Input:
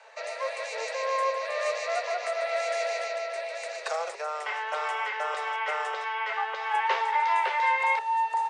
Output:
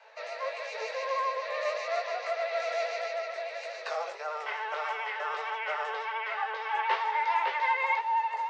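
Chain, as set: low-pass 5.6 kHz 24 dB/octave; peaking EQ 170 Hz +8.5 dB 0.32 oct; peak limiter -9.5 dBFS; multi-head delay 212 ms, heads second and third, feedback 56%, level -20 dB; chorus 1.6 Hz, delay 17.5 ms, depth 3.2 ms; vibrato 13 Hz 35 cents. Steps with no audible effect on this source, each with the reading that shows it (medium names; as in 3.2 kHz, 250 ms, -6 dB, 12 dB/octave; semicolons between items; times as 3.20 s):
peaking EQ 170 Hz: input has nothing below 380 Hz; peak limiter -9.5 dBFS: peak at its input -13.5 dBFS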